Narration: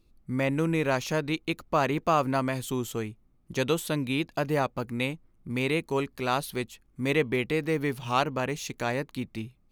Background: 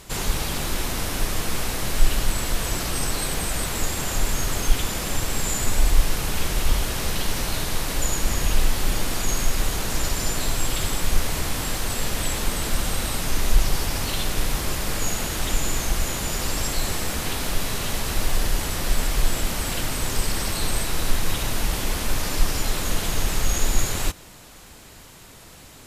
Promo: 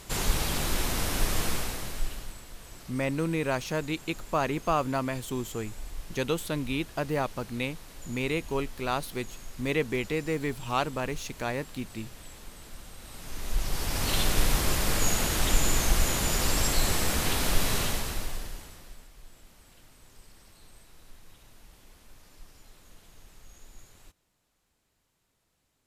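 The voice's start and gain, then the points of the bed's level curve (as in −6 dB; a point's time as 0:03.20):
2.60 s, −2.5 dB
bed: 0:01.46 −2.5 dB
0:02.45 −21.5 dB
0:12.97 −21.5 dB
0:14.15 −0.5 dB
0:17.80 −0.5 dB
0:19.11 −30 dB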